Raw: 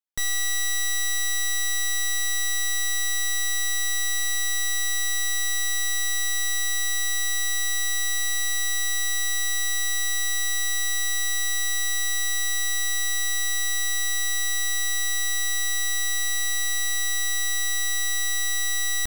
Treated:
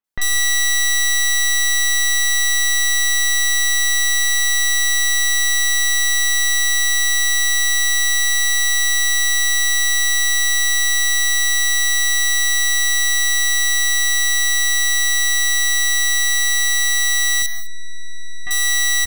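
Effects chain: 17.42–18.47 spectral contrast raised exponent 2.7; bands offset in time lows, highs 40 ms, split 2800 Hz; non-linear reverb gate 0.22 s rising, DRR 8.5 dB; gain +7.5 dB

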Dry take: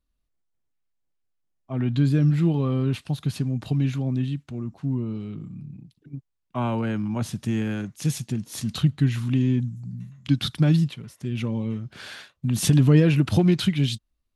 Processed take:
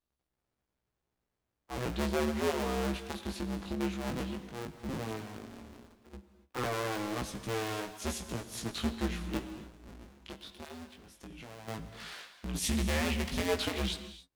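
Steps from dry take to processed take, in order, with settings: cycle switcher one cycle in 2, inverted; low shelf 230 Hz -10.5 dB; 9.37–11.68 compressor 4:1, threshold -41 dBFS, peak gain reduction 19 dB; 12.57–13.49 spectral gain 290–1700 Hz -9 dB; soft clip -15 dBFS, distortion -18 dB; chorus 0.14 Hz, delay 15.5 ms, depth 4.7 ms; non-linear reverb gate 0.31 s flat, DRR 10 dB; stuck buffer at 5.86, samples 2048, times 1; Doppler distortion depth 0.22 ms; gain -2.5 dB

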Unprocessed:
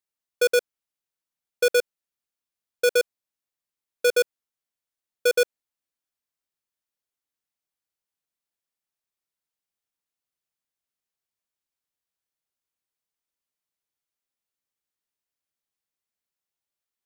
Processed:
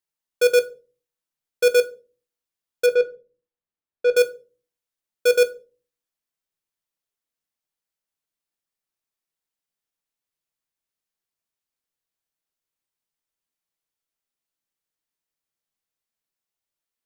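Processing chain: 2.86–4.14 tape spacing loss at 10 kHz 28 dB; on a send: reverb RT60 0.35 s, pre-delay 4 ms, DRR 8 dB

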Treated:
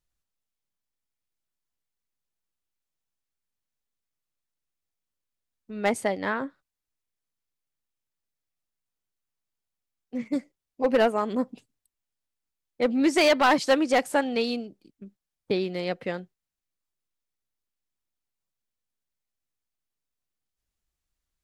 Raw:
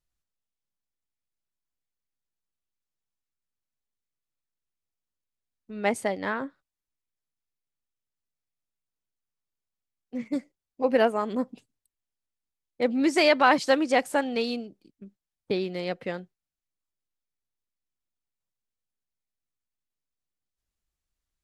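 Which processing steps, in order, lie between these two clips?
overloaded stage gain 16 dB; gain +1.5 dB

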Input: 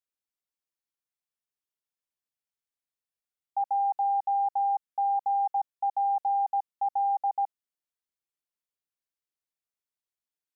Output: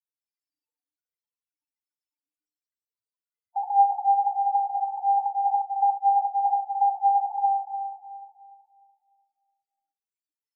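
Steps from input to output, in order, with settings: FDN reverb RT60 2.2 s, high-frequency decay 0.95×, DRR -1.5 dB; loudest bins only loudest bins 8; tape flanging out of phase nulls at 0.25 Hz, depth 7.6 ms; gain +7 dB

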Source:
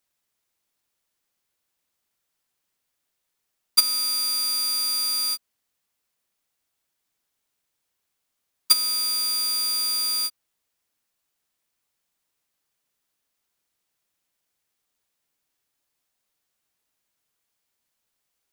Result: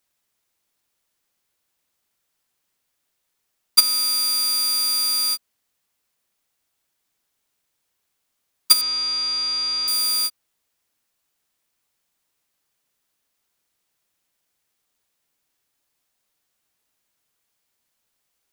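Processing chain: 8.81–9.88 LPF 5700 Hz 24 dB/oct; gain +3.5 dB

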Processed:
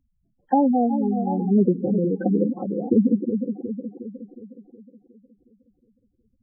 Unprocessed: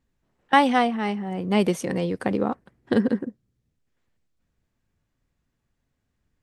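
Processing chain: split-band echo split 890 Hz, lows 0.364 s, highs 0.105 s, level -8 dB; treble ducked by the level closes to 540 Hz, closed at -20 dBFS; spectral gate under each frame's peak -10 dB strong; gain +4.5 dB

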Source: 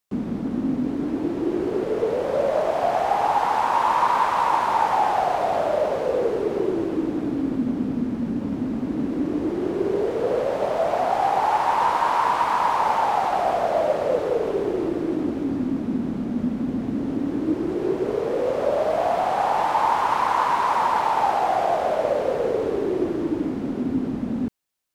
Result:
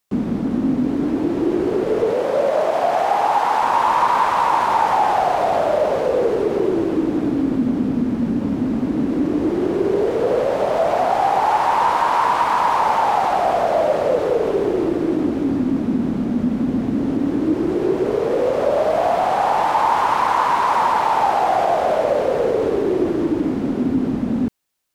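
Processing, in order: 2.11–3.63 HPF 220 Hz 6 dB/oct; in parallel at -0.5 dB: limiter -17.5 dBFS, peak gain reduction 9 dB

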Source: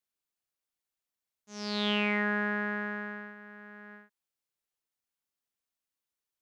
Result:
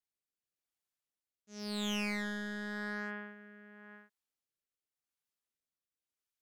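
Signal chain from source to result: tube stage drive 27 dB, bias 0.5; hard clip -30.5 dBFS, distortion -11 dB; rotary speaker horn 0.9 Hz

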